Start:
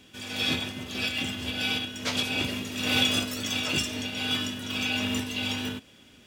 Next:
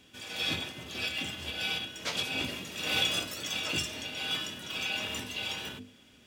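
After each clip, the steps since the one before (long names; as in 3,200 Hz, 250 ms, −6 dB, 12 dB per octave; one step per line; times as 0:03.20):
mains-hum notches 50/100/150/200/250/300/350/400/450 Hz
level −4 dB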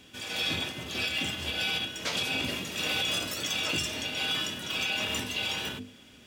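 brickwall limiter −25.5 dBFS, peak gain reduction 10 dB
level +5 dB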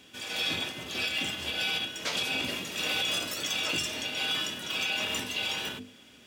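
low-shelf EQ 140 Hz −9 dB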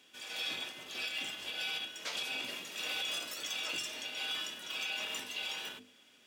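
high-pass filter 500 Hz 6 dB per octave
level −7 dB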